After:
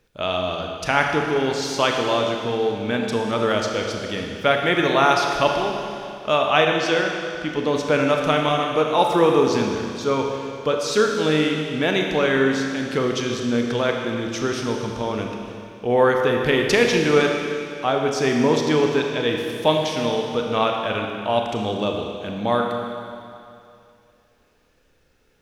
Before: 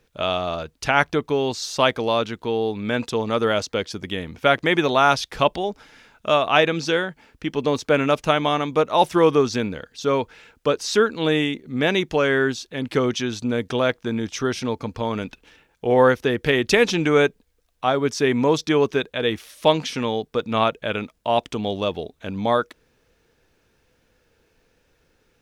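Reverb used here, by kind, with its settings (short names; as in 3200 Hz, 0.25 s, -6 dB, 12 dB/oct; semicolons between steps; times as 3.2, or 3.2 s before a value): Schroeder reverb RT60 2.5 s, combs from 26 ms, DRR 1.5 dB; gain -1.5 dB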